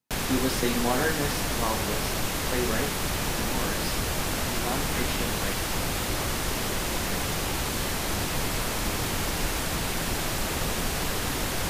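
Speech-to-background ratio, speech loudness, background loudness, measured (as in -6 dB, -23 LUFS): -4.5 dB, -32.5 LUFS, -28.0 LUFS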